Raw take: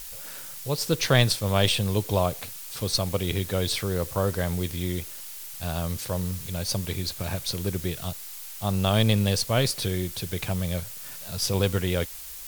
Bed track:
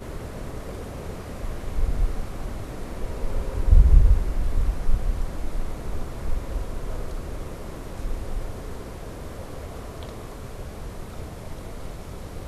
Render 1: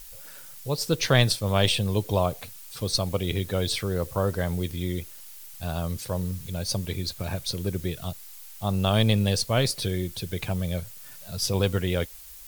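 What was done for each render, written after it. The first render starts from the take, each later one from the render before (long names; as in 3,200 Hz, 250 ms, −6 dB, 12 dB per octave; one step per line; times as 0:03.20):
broadband denoise 7 dB, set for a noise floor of −40 dBFS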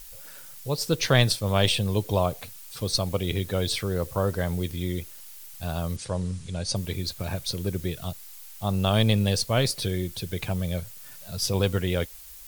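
0:05.96–0:06.76: Butterworth low-pass 9,900 Hz 96 dB per octave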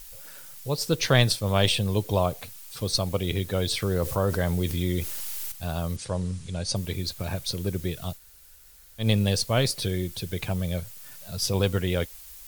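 0:03.82–0:05.52: envelope flattener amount 50%
0:08.17–0:09.03: fill with room tone, crossfade 0.10 s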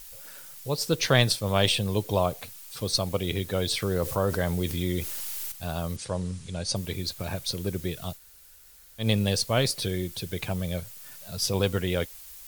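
low-shelf EQ 110 Hz −5.5 dB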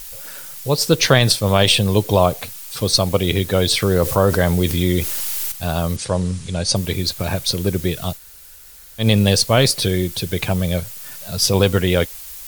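boost into a limiter +10.5 dB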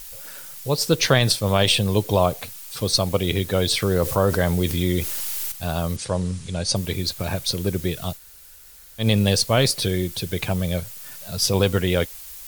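level −4 dB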